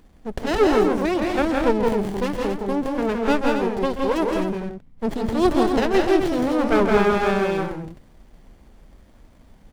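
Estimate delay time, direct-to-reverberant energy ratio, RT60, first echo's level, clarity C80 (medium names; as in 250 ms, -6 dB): 133 ms, no reverb, no reverb, -11.5 dB, no reverb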